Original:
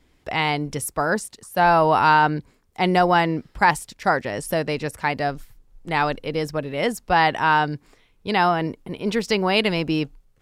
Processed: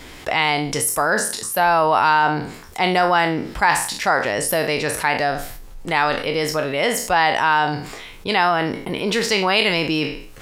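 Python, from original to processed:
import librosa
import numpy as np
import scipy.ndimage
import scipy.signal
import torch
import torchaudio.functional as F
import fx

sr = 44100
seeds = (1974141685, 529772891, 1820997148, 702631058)

y = fx.spec_trails(x, sr, decay_s=0.33)
y = fx.low_shelf(y, sr, hz=380.0, db=-9.5)
y = fx.env_flatten(y, sr, amount_pct=50)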